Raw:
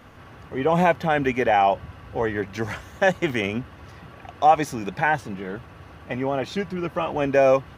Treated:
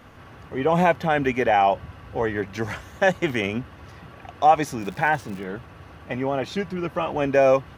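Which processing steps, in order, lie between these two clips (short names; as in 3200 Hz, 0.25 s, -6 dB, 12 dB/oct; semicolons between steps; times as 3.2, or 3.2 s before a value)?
4.79–5.43 crackle 360/s -> 140/s -34 dBFS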